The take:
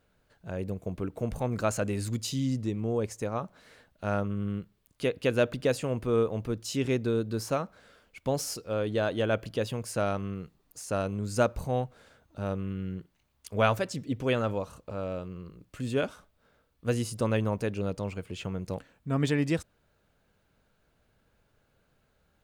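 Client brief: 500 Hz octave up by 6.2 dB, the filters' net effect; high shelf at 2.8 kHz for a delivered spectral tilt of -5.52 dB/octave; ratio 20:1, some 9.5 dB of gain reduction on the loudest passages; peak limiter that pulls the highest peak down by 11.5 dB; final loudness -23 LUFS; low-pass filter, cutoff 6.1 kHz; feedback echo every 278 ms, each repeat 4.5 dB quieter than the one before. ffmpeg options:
-af "lowpass=6100,equalizer=f=500:t=o:g=7,highshelf=f=2800:g=4,acompressor=threshold=0.0631:ratio=20,alimiter=level_in=1.41:limit=0.0631:level=0:latency=1,volume=0.708,aecho=1:1:278|556|834|1112|1390|1668|1946|2224|2502:0.596|0.357|0.214|0.129|0.0772|0.0463|0.0278|0.0167|0.01,volume=4.22"

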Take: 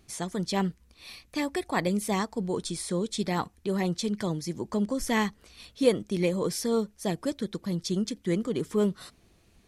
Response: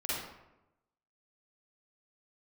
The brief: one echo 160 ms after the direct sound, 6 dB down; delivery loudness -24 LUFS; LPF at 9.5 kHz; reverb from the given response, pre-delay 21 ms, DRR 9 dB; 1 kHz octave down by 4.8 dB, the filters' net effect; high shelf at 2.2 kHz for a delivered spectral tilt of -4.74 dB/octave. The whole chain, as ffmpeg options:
-filter_complex "[0:a]lowpass=9500,equalizer=f=1000:t=o:g=-7,highshelf=f=2200:g=4,aecho=1:1:160:0.501,asplit=2[s0][s1];[1:a]atrim=start_sample=2205,adelay=21[s2];[s1][s2]afir=irnorm=-1:irlink=0,volume=0.2[s3];[s0][s3]amix=inputs=2:normalize=0,volume=1.68"

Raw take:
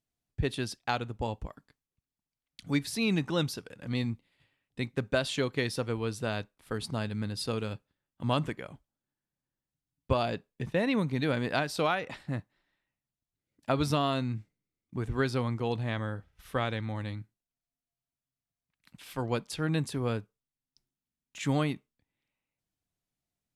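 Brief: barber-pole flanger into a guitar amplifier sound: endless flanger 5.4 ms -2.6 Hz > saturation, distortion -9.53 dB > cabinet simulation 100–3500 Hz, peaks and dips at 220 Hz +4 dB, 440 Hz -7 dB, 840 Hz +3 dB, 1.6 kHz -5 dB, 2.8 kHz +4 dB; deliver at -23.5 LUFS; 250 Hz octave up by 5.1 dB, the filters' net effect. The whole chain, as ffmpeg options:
-filter_complex "[0:a]equalizer=f=250:t=o:g=4.5,asplit=2[s0][s1];[s1]adelay=5.4,afreqshift=-2.6[s2];[s0][s2]amix=inputs=2:normalize=1,asoftclip=threshold=0.0335,highpass=100,equalizer=f=220:t=q:w=4:g=4,equalizer=f=440:t=q:w=4:g=-7,equalizer=f=840:t=q:w=4:g=3,equalizer=f=1600:t=q:w=4:g=-5,equalizer=f=2800:t=q:w=4:g=4,lowpass=f=3500:w=0.5412,lowpass=f=3500:w=1.3066,volume=5.31"

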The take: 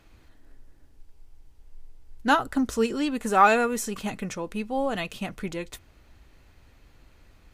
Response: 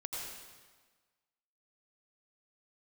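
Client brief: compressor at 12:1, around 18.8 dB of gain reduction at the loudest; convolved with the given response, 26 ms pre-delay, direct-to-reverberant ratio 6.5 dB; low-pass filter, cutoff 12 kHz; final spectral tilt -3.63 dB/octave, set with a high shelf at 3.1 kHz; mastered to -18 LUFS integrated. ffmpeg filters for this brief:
-filter_complex "[0:a]lowpass=12000,highshelf=f=3100:g=5.5,acompressor=threshold=0.0316:ratio=12,asplit=2[s0][s1];[1:a]atrim=start_sample=2205,adelay=26[s2];[s1][s2]afir=irnorm=-1:irlink=0,volume=0.422[s3];[s0][s3]amix=inputs=2:normalize=0,volume=6.68"

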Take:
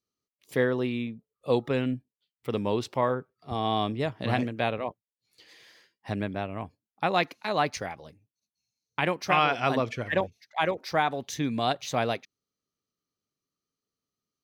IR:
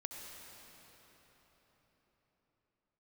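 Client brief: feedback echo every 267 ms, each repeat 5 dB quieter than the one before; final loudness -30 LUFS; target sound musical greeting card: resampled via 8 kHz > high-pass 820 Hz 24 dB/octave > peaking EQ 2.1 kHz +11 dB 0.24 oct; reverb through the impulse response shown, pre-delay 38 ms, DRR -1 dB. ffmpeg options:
-filter_complex "[0:a]aecho=1:1:267|534|801|1068|1335|1602|1869:0.562|0.315|0.176|0.0988|0.0553|0.031|0.0173,asplit=2[s0][s1];[1:a]atrim=start_sample=2205,adelay=38[s2];[s1][s2]afir=irnorm=-1:irlink=0,volume=1.33[s3];[s0][s3]amix=inputs=2:normalize=0,aresample=8000,aresample=44100,highpass=f=820:w=0.5412,highpass=f=820:w=1.3066,equalizer=f=2100:t=o:w=0.24:g=11,volume=0.708"

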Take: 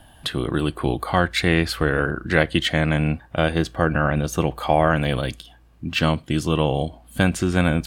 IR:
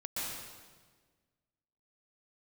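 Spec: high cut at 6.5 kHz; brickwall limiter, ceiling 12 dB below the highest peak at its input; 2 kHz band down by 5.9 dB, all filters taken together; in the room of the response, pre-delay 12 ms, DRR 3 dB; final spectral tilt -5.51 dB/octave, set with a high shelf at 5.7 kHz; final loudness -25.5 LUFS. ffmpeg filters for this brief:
-filter_complex "[0:a]lowpass=6500,equalizer=f=2000:t=o:g=-7.5,highshelf=f=5700:g=-6,alimiter=limit=0.15:level=0:latency=1,asplit=2[s0][s1];[1:a]atrim=start_sample=2205,adelay=12[s2];[s1][s2]afir=irnorm=-1:irlink=0,volume=0.473[s3];[s0][s3]amix=inputs=2:normalize=0,volume=1.12"

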